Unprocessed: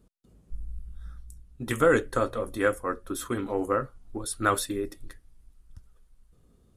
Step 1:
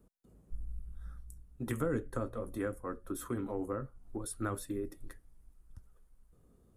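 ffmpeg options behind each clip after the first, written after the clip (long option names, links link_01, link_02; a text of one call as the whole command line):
ffmpeg -i in.wav -filter_complex "[0:a]equalizer=frequency=3900:width=0.58:gain=-10,acrossover=split=260[link_01][link_02];[link_02]acompressor=threshold=-40dB:ratio=3[link_03];[link_01][link_03]amix=inputs=2:normalize=0,lowshelf=frequency=250:gain=-4.5" out.wav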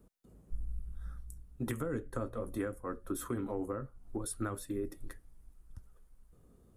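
ffmpeg -i in.wav -af "alimiter=level_in=4dB:limit=-24dB:level=0:latency=1:release=477,volume=-4dB,volume=2.5dB" out.wav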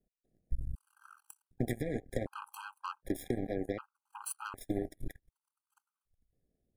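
ffmpeg -i in.wav -af "acompressor=threshold=-39dB:ratio=4,aeval=exprs='0.0299*(cos(1*acos(clip(val(0)/0.0299,-1,1)))-cos(1*PI/2))+0.00335*(cos(2*acos(clip(val(0)/0.0299,-1,1)))-cos(2*PI/2))+0.00422*(cos(3*acos(clip(val(0)/0.0299,-1,1)))-cos(3*PI/2))+0.000376*(cos(6*acos(clip(val(0)/0.0299,-1,1)))-cos(6*PI/2))+0.00266*(cos(7*acos(clip(val(0)/0.0299,-1,1)))-cos(7*PI/2))':channel_layout=same,afftfilt=real='re*gt(sin(2*PI*0.66*pts/sr)*(1-2*mod(floor(b*sr/1024/810),2)),0)':imag='im*gt(sin(2*PI*0.66*pts/sr)*(1-2*mod(floor(b*sr/1024/810),2)),0)':win_size=1024:overlap=0.75,volume=10dB" out.wav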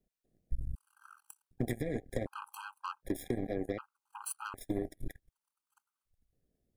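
ffmpeg -i in.wav -af "aeval=exprs='0.141*(cos(1*acos(clip(val(0)/0.141,-1,1)))-cos(1*PI/2))+0.00501*(cos(5*acos(clip(val(0)/0.141,-1,1)))-cos(5*PI/2))':channel_layout=same,volume=-1dB" out.wav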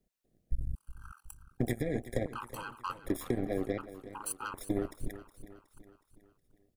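ffmpeg -i in.wav -af "aecho=1:1:367|734|1101|1468|1835:0.188|0.0942|0.0471|0.0235|0.0118,volume=2.5dB" out.wav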